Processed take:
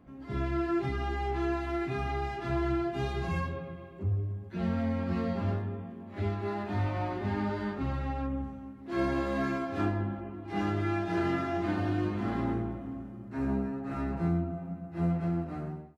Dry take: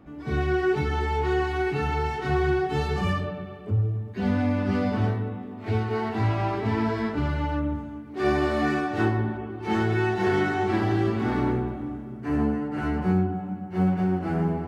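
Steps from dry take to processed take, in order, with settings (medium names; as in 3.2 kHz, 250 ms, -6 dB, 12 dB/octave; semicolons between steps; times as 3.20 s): fade out at the end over 0.58 s; speed mistake 48 kHz file played as 44.1 kHz; trim -6.5 dB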